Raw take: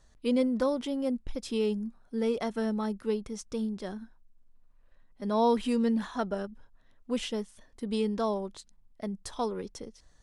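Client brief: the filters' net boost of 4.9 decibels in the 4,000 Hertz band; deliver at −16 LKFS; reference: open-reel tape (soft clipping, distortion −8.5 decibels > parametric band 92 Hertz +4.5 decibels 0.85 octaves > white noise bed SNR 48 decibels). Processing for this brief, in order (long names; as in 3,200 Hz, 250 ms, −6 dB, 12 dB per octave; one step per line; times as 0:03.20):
parametric band 4,000 Hz +6.5 dB
soft clipping −30 dBFS
parametric band 92 Hz +4.5 dB 0.85 octaves
white noise bed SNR 48 dB
level +20 dB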